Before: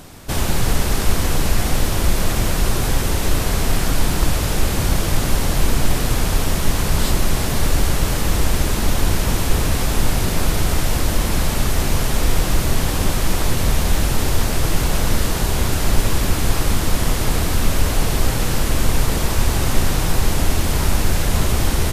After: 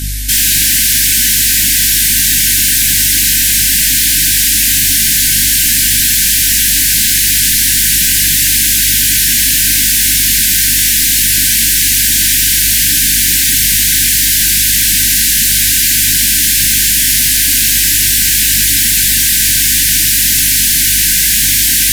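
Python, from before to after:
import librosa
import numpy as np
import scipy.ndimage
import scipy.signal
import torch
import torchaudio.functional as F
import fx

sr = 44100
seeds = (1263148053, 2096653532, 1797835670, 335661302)

y = scipy.signal.sosfilt(scipy.signal.butter(2, 130.0, 'highpass', fs=sr, output='sos'), x)
y = fx.tilt_eq(y, sr, slope=4.0)
y = fx.add_hum(y, sr, base_hz=50, snr_db=17)
y = fx.chorus_voices(y, sr, voices=2, hz=0.93, base_ms=20, depth_ms=3.0, mix_pct=45)
y = fx.fold_sine(y, sr, drive_db=13, ceiling_db=-5.5)
y = fx.brickwall_bandstop(y, sr, low_hz=320.0, high_hz=1500.0)
y = y * 10.0 ** (-1.0 / 20.0)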